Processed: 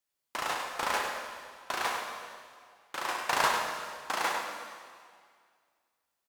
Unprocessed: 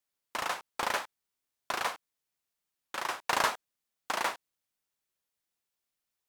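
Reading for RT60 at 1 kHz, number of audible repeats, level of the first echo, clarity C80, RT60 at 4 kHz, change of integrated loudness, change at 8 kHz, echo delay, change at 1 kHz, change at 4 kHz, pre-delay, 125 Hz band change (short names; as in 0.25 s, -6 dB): 2.0 s, 1, -7.0 dB, 2.5 dB, 1.9 s, +0.5 dB, +2.0 dB, 99 ms, +2.5 dB, +2.0 dB, 5 ms, +2.0 dB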